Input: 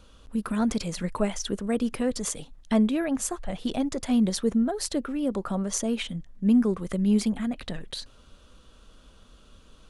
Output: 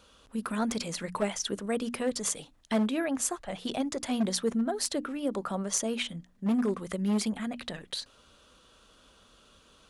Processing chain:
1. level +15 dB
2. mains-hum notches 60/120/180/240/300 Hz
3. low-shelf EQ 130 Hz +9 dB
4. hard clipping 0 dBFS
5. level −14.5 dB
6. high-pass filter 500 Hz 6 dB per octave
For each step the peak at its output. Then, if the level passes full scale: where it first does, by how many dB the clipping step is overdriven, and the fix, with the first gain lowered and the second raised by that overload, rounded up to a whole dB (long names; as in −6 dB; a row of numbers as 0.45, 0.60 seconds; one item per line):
+3.5, +3.5, +5.0, 0.0, −14.5, −14.0 dBFS
step 1, 5.0 dB
step 1 +10 dB, step 5 −9.5 dB